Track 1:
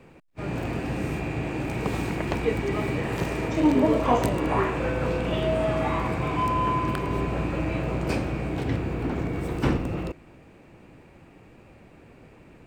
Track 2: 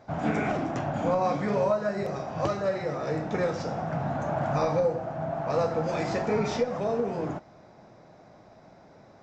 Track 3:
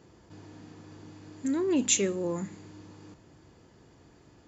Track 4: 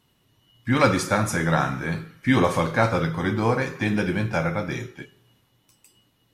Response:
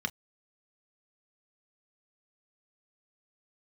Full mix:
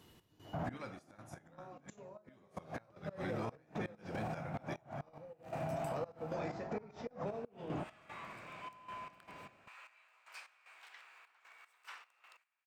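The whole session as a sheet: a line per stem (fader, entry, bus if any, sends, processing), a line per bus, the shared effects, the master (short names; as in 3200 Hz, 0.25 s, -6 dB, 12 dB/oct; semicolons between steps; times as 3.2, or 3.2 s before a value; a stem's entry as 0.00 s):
-16.0 dB, 2.25 s, muted 6.34–7.27, no send, HPF 1100 Hz 24 dB/oct
-3.0 dB, 0.45 s, no send, high shelf 3500 Hz -8 dB
-10.5 dB, 0.00 s, no send, dry
+2.0 dB, 0.00 s, no send, ending taper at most 130 dB/s; auto duck -13 dB, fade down 1.85 s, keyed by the third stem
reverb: off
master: flipped gate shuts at -20 dBFS, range -25 dB; step gate "x.xxx.x.x.x.." 76 bpm -12 dB; limiter -31 dBFS, peak gain reduction 11.5 dB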